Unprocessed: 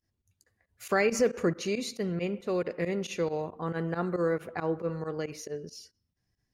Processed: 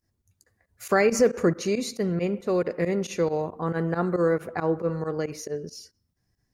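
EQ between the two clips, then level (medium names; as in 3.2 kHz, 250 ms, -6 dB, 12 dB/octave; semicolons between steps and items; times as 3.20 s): peaking EQ 3 kHz -6.5 dB 0.92 oct; +5.5 dB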